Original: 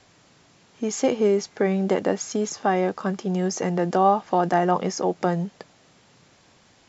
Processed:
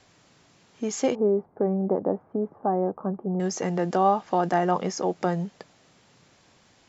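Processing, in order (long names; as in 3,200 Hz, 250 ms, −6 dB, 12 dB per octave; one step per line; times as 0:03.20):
0:01.15–0:03.40: low-pass filter 1,000 Hz 24 dB per octave
level −2.5 dB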